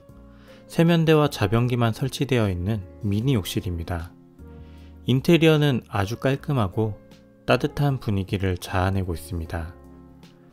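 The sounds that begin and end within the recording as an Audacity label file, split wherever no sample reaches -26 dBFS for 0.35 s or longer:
0.740000	4.020000	sound
5.080000	6.920000	sound
7.480000	9.640000	sound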